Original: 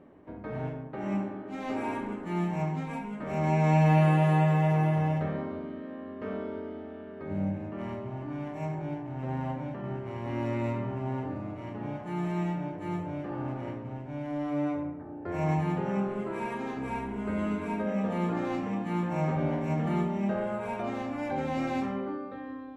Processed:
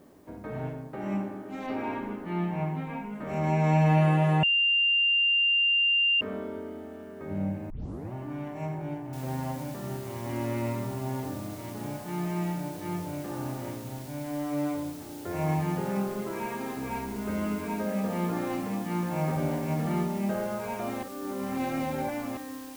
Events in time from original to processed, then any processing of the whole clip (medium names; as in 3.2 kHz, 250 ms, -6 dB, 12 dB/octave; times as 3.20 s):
1.66–3.14 s: low-pass 5.2 kHz -> 3.3 kHz 24 dB/octave
4.43–6.21 s: bleep 2.79 kHz -20.5 dBFS
7.70 s: tape start 0.43 s
9.13 s: noise floor step -70 dB -50 dB
21.03–22.37 s: reverse